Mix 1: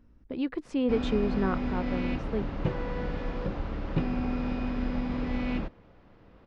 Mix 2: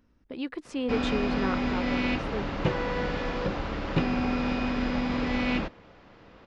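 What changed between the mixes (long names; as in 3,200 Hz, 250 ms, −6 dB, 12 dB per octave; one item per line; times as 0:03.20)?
background +7.0 dB
master: add spectral tilt +2 dB per octave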